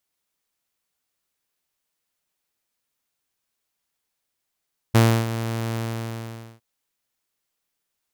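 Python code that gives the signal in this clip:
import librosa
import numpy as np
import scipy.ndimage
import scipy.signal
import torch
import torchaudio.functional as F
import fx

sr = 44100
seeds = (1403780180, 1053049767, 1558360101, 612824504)

y = fx.adsr_tone(sr, wave='saw', hz=114.0, attack_ms=15.0, decay_ms=300.0, sustain_db=-13.0, held_s=0.82, release_ms=841.0, level_db=-9.0)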